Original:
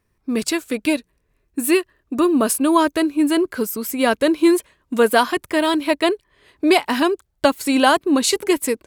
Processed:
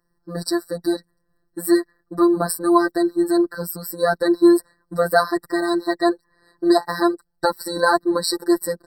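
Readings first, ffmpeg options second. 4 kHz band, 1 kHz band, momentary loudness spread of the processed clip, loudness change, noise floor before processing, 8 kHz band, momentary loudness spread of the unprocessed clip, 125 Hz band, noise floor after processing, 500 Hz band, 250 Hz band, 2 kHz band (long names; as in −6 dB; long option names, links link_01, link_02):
−5.5 dB, −1.5 dB, 12 LU, −1.5 dB, −69 dBFS, −5.5 dB, 8 LU, can't be measured, −70 dBFS, −0.5 dB, −1.5 dB, −3.0 dB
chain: -af "afftfilt=real='hypot(re,im)*cos(PI*b)':imag='0':win_size=1024:overlap=0.75,afftfilt=real='re*eq(mod(floor(b*sr/1024/1900),2),0)':imag='im*eq(mod(floor(b*sr/1024/1900),2),0)':win_size=1024:overlap=0.75,volume=2dB"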